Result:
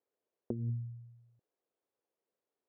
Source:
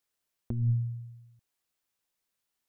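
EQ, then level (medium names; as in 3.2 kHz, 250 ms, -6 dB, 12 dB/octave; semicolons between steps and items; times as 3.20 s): band-pass filter 450 Hz, Q 2.4; +9.5 dB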